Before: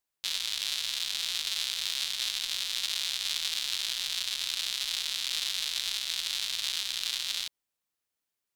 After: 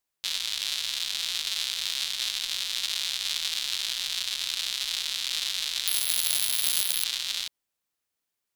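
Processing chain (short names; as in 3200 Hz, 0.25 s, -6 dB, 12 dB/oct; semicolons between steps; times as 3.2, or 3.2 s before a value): 5.87–7.04 careless resampling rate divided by 3×, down none, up zero stuff; gain +2 dB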